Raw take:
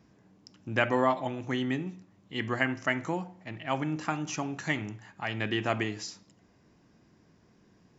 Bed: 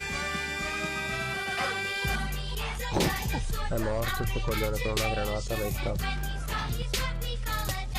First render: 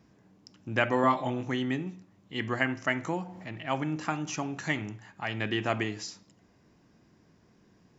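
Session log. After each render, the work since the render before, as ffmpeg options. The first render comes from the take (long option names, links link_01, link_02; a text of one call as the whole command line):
ffmpeg -i in.wav -filter_complex "[0:a]asettb=1/sr,asplit=3[link_01][link_02][link_03];[link_01]atrim=end=1.014[link_04];[link_02]atrim=start=1.01:end=1.5,asetpts=PTS-STARTPTS,afade=type=in:duration=0.004:curve=qsin,afade=type=out:start_time=0.486:duration=0.004:curve=qsin,asplit=2[link_05][link_06];[link_06]adelay=24,volume=-3dB[link_07];[link_05][link_07]amix=inputs=2:normalize=0,atrim=end_sample=21609[link_08];[link_03]atrim=start=1.496[link_09];[link_04][link_08]acrossfade=duration=0.004:curve1=hsin:curve2=qsin[link_10];[link_10][link_09]acrossfade=duration=0.004:curve1=qsin:curve2=hsin,asettb=1/sr,asplit=3[link_11][link_12][link_13];[link_11]atrim=end=3.054[link_14];[link_12]atrim=start=3.05:end=4.82,asetpts=PTS-STARTPTS,afade=type=in:duration=0.004:curve=qsin,afade=type=out:start_time=1.766:duration=0.004:curve=qsin,acompressor=mode=upward:threshold=-35dB:ratio=2.5:attack=3.2:release=140:knee=2.83:detection=peak[link_15];[link_13]atrim=start=4.816[link_16];[link_14][link_15]acrossfade=duration=0.004:curve1=hsin:curve2=qsin[link_17];[link_17][link_16]acrossfade=duration=0.004:curve1=qsin:curve2=hsin" out.wav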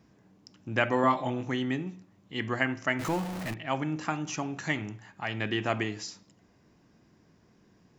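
ffmpeg -i in.wav -filter_complex "[0:a]asettb=1/sr,asplit=3[link_01][link_02][link_03];[link_01]atrim=end=2.994[link_04];[link_02]atrim=start=2.99:end=3.54,asetpts=PTS-STARTPTS,afade=type=in:duration=0.004:curve=qsin,afade=type=out:start_time=0.546:duration=0.004:curve=qsin,aeval=exprs='val(0)+0.5*0.0237*sgn(val(0))':channel_layout=same[link_05];[link_03]atrim=start=3.536[link_06];[link_04][link_05]acrossfade=duration=0.004:curve1=hsin:curve2=qsin[link_07];[link_07][link_06]acrossfade=duration=0.004:curve1=qsin:curve2=hsin" out.wav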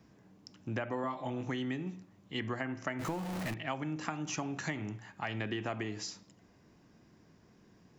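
ffmpeg -i in.wav -filter_complex "[0:a]acrossover=split=330|1400[link_01][link_02][link_03];[link_03]alimiter=level_in=1dB:limit=-24dB:level=0:latency=1:release=381,volume=-1dB[link_04];[link_01][link_02][link_04]amix=inputs=3:normalize=0,acompressor=threshold=-32dB:ratio=16" out.wav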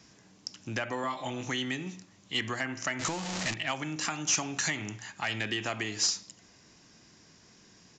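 ffmpeg -i in.wav -af "crystalizer=i=9:c=0,aresample=16000,asoftclip=type=tanh:threshold=-20dB,aresample=44100" out.wav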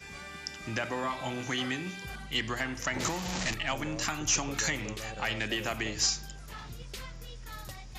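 ffmpeg -i in.wav -i bed.wav -filter_complex "[1:a]volume=-12.5dB[link_01];[0:a][link_01]amix=inputs=2:normalize=0" out.wav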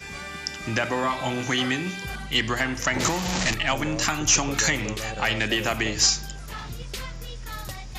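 ffmpeg -i in.wav -af "volume=8dB" out.wav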